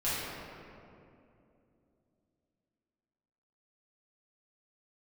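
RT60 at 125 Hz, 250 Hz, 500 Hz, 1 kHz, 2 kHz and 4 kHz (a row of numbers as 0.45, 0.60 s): 3.4, 3.7, 3.1, 2.4, 1.9, 1.4 s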